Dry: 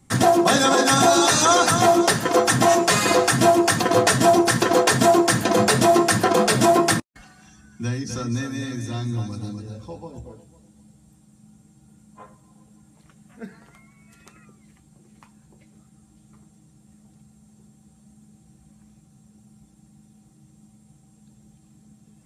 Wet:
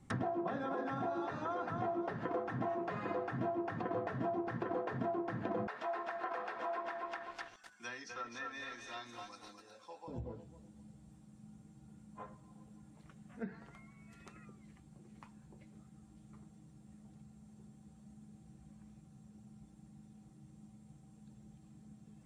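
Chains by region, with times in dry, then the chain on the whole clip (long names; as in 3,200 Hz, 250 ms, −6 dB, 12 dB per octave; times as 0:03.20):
0:05.67–0:10.08: high-pass filter 920 Hz + feedback echo at a low word length 252 ms, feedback 35%, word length 7 bits, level −4.5 dB
whole clip: downward compressor 12 to 1, threshold −29 dBFS; treble cut that deepens with the level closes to 1,600 Hz, closed at −30 dBFS; high-shelf EQ 4,300 Hz −10.5 dB; level −4.5 dB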